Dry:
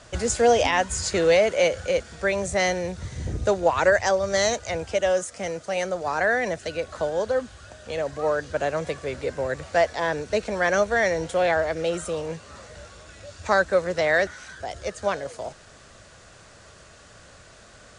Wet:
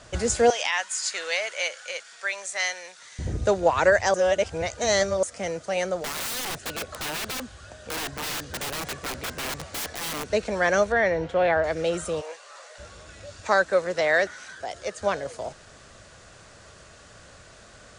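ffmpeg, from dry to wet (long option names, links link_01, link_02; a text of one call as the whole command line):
ffmpeg -i in.wav -filter_complex "[0:a]asettb=1/sr,asplit=3[link_01][link_02][link_03];[link_01]atrim=end=0.504[link_04];[link_02]atrim=start=0.5:end=3.19,asetpts=PTS-STARTPTS,afade=type=in:duration=0.004:curve=qsin,afade=type=out:start_time=2.686:duration=0.004:curve=qsin,highpass=1300[link_05];[link_03]atrim=start=3.186[link_06];[link_04][link_05]acrossfade=duration=0.004:curve1=hsin:curve2=qsin[link_07];[link_07][link_06]acrossfade=duration=0.004:curve1=qsin:curve2=hsin,asettb=1/sr,asplit=3[link_08][link_09][link_10];[link_08]atrim=end=6.044[link_11];[link_09]atrim=start=6.04:end=10.32,asetpts=PTS-STARTPTS,afade=type=in:duration=0.004:curve=qsin,afade=type=out:start_time=4.276:duration=0.004:curve=qsin,aeval=exprs='(mod(20*val(0)+1,2)-1)/20':channel_layout=same[link_12];[link_10]atrim=start=10.316[link_13];[link_11][link_12]acrossfade=duration=0.004:curve1=hsin:curve2=qsin[link_14];[link_14][link_13]acrossfade=duration=0.004:curve1=qsin:curve2=hsin,asettb=1/sr,asplit=3[link_15][link_16][link_17];[link_15]atrim=end=10.924[link_18];[link_16]atrim=start=10.92:end=11.64,asetpts=PTS-STARTPTS,afade=type=in:duration=0.004:curve=qsin,afade=type=out:start_time=0.716:duration=0.004:curve=qsin,lowpass=2900[link_19];[link_17]atrim=start=11.636[link_20];[link_18][link_19]acrossfade=duration=0.004:curve1=hsin:curve2=qsin[link_21];[link_21][link_20]acrossfade=duration=0.004:curve1=qsin:curve2=hsin,asplit=3[link_22][link_23][link_24];[link_22]afade=type=out:start_time=12.2:duration=0.02[link_25];[link_23]highpass=frequency=560:width=0.5412,highpass=frequency=560:width=1.3066,afade=type=in:start_time=12.2:duration=0.02,afade=type=out:start_time=12.78:duration=0.02[link_26];[link_24]afade=type=in:start_time=12.78:duration=0.02[link_27];[link_25][link_26][link_27]amix=inputs=3:normalize=0,asettb=1/sr,asplit=3[link_28][link_29][link_30];[link_28]atrim=end=13.404[link_31];[link_29]atrim=start=13.4:end=15.01,asetpts=PTS-STARTPTS,afade=type=in:duration=0.004:curve=qsin,afade=type=out:start_time=1.606:duration=0.004:curve=qsin,highpass=frequency=270:poles=1[link_32];[link_30]atrim=start=15.006[link_33];[link_31][link_32]acrossfade=duration=0.004:curve1=hsin:curve2=qsin[link_34];[link_34][link_33]acrossfade=duration=0.004:curve1=qsin:curve2=hsin,asplit=3[link_35][link_36][link_37];[link_35]atrim=end=4.142[link_38];[link_36]atrim=start=4.138:end=5.232,asetpts=PTS-STARTPTS,areverse[link_39];[link_37]atrim=start=5.228[link_40];[link_38][link_39]acrossfade=duration=0.004:curve1=hsin:curve2=hsin[link_41];[link_41][link_40]acrossfade=duration=0.004:curve1=hsin:curve2=hsin" out.wav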